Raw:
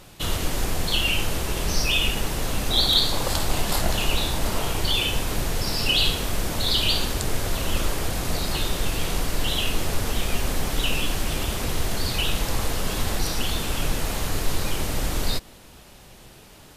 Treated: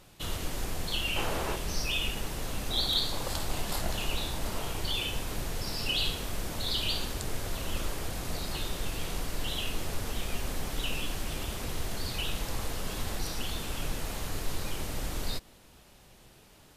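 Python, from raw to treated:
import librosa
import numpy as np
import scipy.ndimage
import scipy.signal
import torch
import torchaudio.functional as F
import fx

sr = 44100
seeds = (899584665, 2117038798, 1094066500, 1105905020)

y = fx.peak_eq(x, sr, hz=840.0, db=10.0, octaves=2.9, at=(1.16, 1.56))
y = y * 10.0 ** (-9.0 / 20.0)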